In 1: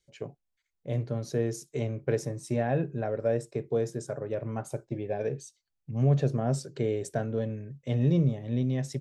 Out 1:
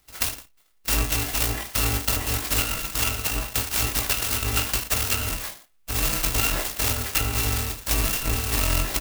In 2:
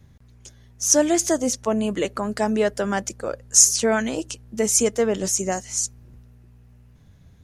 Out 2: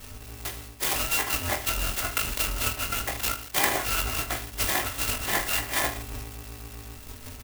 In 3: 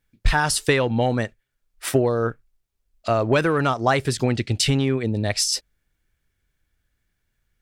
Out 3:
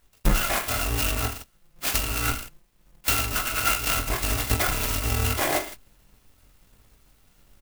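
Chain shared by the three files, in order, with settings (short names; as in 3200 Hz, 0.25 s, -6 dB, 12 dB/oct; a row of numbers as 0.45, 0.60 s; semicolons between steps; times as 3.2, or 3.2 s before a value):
FFT order left unsorted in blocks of 256 samples; reverse; compressor 8:1, threshold -28 dBFS; reverse; downsampling 16000 Hz; high shelf 2100 Hz +5.5 dB; on a send: reverse bouncing-ball echo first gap 20 ms, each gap 1.25×, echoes 5; on the sum: treble ducked by the level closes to 2100 Hz, closed at -27.5 dBFS; clock jitter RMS 0.062 ms; normalise peaks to -9 dBFS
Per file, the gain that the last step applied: +15.0, +11.0, +13.5 dB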